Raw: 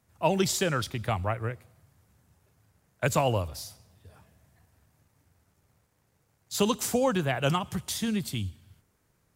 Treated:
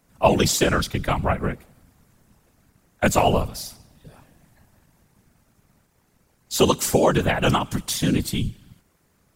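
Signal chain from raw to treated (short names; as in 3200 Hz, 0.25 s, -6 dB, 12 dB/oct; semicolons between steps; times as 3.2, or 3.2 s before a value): whisperiser; gain +7 dB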